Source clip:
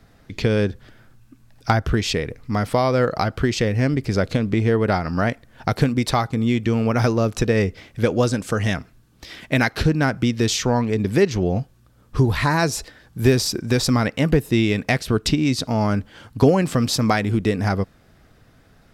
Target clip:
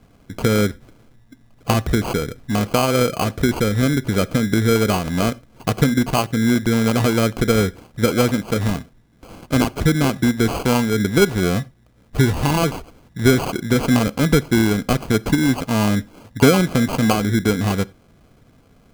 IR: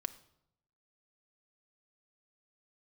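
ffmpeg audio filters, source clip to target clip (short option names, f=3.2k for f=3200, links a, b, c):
-filter_complex "[0:a]equalizer=f=240:w=0.5:g=4,acrusher=samples=24:mix=1:aa=0.000001,asplit=2[a][b];[1:a]atrim=start_sample=2205,afade=t=out:st=0.15:d=0.01,atrim=end_sample=7056[c];[b][c]afir=irnorm=-1:irlink=0,volume=-1dB[d];[a][d]amix=inputs=2:normalize=0,volume=-6dB"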